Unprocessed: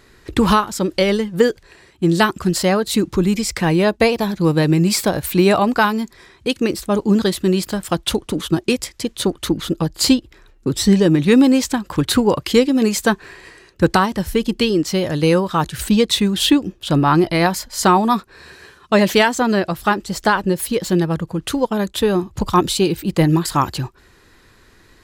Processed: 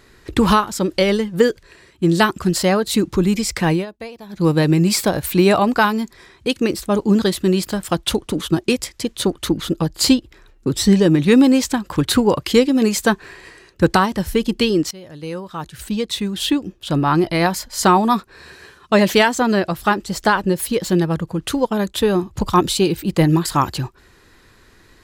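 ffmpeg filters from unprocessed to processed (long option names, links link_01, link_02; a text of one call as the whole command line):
ffmpeg -i in.wav -filter_complex "[0:a]asettb=1/sr,asplit=3[link_01][link_02][link_03];[link_01]atrim=end=1.404[link_04];[link_02]atrim=start=1.4:end=2.07,asetpts=PTS-STARTPTS,afade=type=in:duration=0.004:curve=qsin,afade=type=out:start_time=0.666:duration=0.004:curve=qsin,bandreject=frequency=790:width=5[link_05];[link_03]atrim=start=2.066[link_06];[link_04][link_05]acrossfade=duration=0.004:curve1=hsin:curve2=qsin[link_07];[link_07][link_06]acrossfade=duration=0.004:curve1=qsin:curve2=hsin,asplit=4[link_08][link_09][link_10][link_11];[link_08]atrim=end=3.86,asetpts=PTS-STARTPTS,afade=type=out:start_time=3.72:duration=0.14:silence=0.125893[link_12];[link_09]atrim=start=3.86:end=4.29,asetpts=PTS-STARTPTS,volume=-18dB[link_13];[link_10]atrim=start=4.29:end=14.91,asetpts=PTS-STARTPTS,afade=type=in:duration=0.14:silence=0.125893,afade=type=out:start_time=10.616:duration=0.004:curve=hsin:silence=0.0841395[link_14];[link_11]atrim=start=14.91,asetpts=PTS-STARTPTS,afade=type=in:duration=2.91:silence=0.0841395[link_15];[link_12][link_13][link_14][link_15]concat=n=4:v=0:a=1" out.wav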